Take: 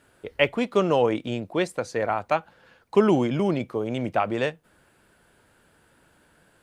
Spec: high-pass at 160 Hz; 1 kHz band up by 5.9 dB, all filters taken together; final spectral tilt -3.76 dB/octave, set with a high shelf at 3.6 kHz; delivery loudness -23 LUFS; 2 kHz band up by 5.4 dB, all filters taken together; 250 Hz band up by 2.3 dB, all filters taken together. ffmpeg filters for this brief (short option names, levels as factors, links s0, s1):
-af "highpass=160,equalizer=f=250:t=o:g=3.5,equalizer=f=1000:t=o:g=6.5,equalizer=f=2000:t=o:g=4,highshelf=f=3600:g=3,volume=0.841"